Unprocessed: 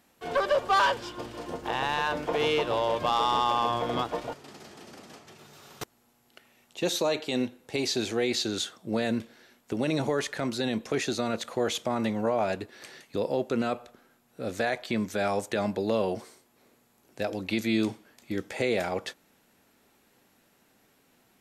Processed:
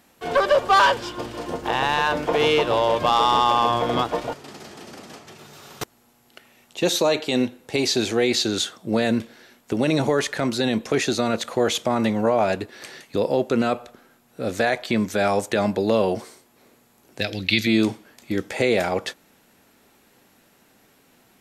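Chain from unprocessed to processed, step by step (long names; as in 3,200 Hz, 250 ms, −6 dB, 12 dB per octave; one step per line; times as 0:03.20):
0:17.21–0:17.67: octave-band graphic EQ 125/250/500/1,000/2,000/4,000/8,000 Hz +6/−4/−5/−12/+6/+10/−5 dB
level +7 dB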